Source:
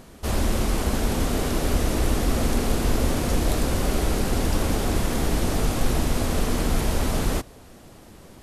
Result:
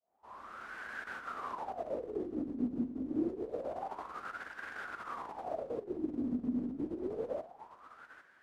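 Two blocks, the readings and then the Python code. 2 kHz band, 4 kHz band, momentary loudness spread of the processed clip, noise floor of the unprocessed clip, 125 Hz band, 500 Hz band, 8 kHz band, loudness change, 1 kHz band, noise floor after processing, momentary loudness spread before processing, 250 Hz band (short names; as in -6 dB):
-11.5 dB, -29.0 dB, 16 LU, -47 dBFS, -29.0 dB, -12.0 dB, under -35 dB, -14.5 dB, -11.5 dB, -63 dBFS, 1 LU, -11.0 dB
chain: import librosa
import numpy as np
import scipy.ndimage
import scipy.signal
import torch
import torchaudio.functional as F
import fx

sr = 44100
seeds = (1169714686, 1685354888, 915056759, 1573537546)

y = fx.fade_in_head(x, sr, length_s=1.1)
y = fx.over_compress(y, sr, threshold_db=-23.0, ratio=-0.5)
y = y + 10.0 ** (-12.5 / 20.0) * np.pad(y, (int(802 * sr / 1000.0), 0))[:len(y)]
y = fx.wah_lfo(y, sr, hz=0.27, low_hz=250.0, high_hz=1600.0, q=8.5)
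y = y * 10.0 ** (1.0 / 20.0)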